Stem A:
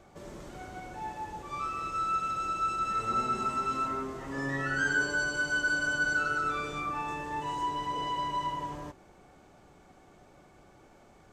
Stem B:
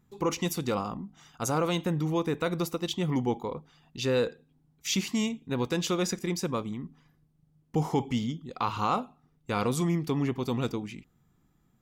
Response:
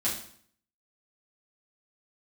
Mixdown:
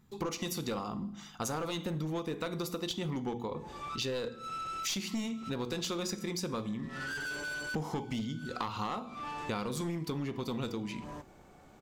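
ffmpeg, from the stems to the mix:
-filter_complex "[0:a]asoftclip=type=tanh:threshold=-35dB,adelay=2300,volume=-1dB[link_01];[1:a]equalizer=frequency=4300:width_type=o:width=0.58:gain=4.5,bandreject=frequency=60:width_type=h:width=6,bandreject=frequency=120:width_type=h:width=6,bandreject=frequency=180:width_type=h:width=6,bandreject=frequency=240:width_type=h:width=6,bandreject=frequency=300:width_type=h:width=6,bandreject=frequency=360:width_type=h:width=6,bandreject=frequency=420:width_type=h:width=6,bandreject=frequency=480:width_type=h:width=6,volume=2dB,asplit=3[link_02][link_03][link_04];[link_03]volume=-17.5dB[link_05];[link_04]apad=whole_len=600762[link_06];[link_01][link_06]sidechaincompress=threshold=-46dB:ratio=8:attack=16:release=153[link_07];[2:a]atrim=start_sample=2205[link_08];[link_05][link_08]afir=irnorm=-1:irlink=0[link_09];[link_07][link_02][link_09]amix=inputs=3:normalize=0,aeval=exprs='clip(val(0),-1,0.075)':channel_layout=same,acompressor=threshold=-33dB:ratio=6"

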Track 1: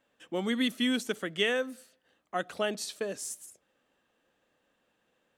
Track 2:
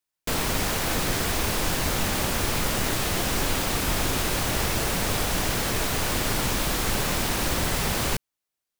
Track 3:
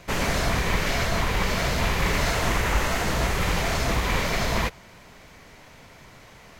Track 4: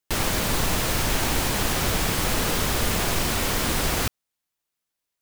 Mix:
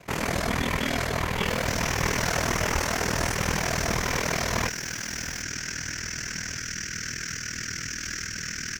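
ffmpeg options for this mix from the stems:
ffmpeg -i stem1.wav -i stem2.wav -i stem3.wav -i stem4.wav -filter_complex "[0:a]volume=-1.5dB[link_01];[1:a]firequalizer=gain_entry='entry(180,0);entry(890,-28);entry(1500,10);entry(3800,-8);entry(5700,14);entry(9300,-14)':delay=0.05:min_phase=1,alimiter=limit=-23.5dB:level=0:latency=1:release=55,adelay=1400,volume=2.5dB[link_02];[2:a]equalizer=frequency=3800:width_type=o:width=0.77:gain=-3.5,volume=1dB[link_03];[3:a]adelay=1350,volume=-15.5dB[link_04];[link_01][link_02][link_03][link_04]amix=inputs=4:normalize=0,highpass=60,aeval=exprs='val(0)*sin(2*PI*20*n/s)':channel_layout=same" out.wav

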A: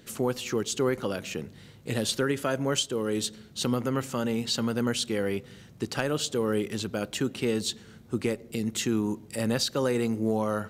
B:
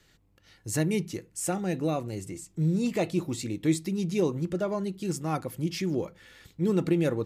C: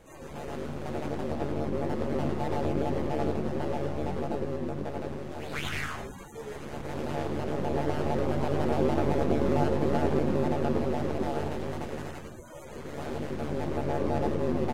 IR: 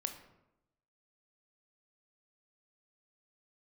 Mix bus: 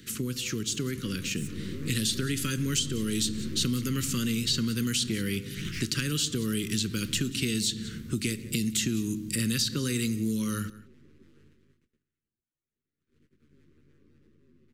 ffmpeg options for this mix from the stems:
-filter_complex "[0:a]volume=0.5dB,asplit=3[link_01][link_02][link_03];[link_02]volume=-3dB[link_04];[link_03]volume=-20dB[link_05];[1:a]asoftclip=type=hard:threshold=-31.5dB,alimiter=level_in=13.5dB:limit=-24dB:level=0:latency=1,volume=-13.5dB,volume=-6.5dB,asplit=2[link_06][link_07];[2:a]agate=range=-25dB:threshold=-31dB:ratio=16:detection=peak,volume=-8dB[link_08];[link_07]apad=whole_len=649610[link_09];[link_08][link_09]sidechaingate=range=-24dB:threshold=-57dB:ratio=16:detection=peak[link_10];[3:a]atrim=start_sample=2205[link_11];[link_04][link_11]afir=irnorm=-1:irlink=0[link_12];[link_05]aecho=0:1:180:1[link_13];[link_01][link_06][link_10][link_12][link_13]amix=inputs=5:normalize=0,dynaudnorm=framelen=200:gausssize=17:maxgain=10.5dB,asuperstop=centerf=730:order=4:qfactor=0.62,acrossover=split=230|3000[link_14][link_15][link_16];[link_14]acompressor=threshold=-31dB:ratio=4[link_17];[link_15]acompressor=threshold=-38dB:ratio=4[link_18];[link_16]acompressor=threshold=-29dB:ratio=4[link_19];[link_17][link_18][link_19]amix=inputs=3:normalize=0"

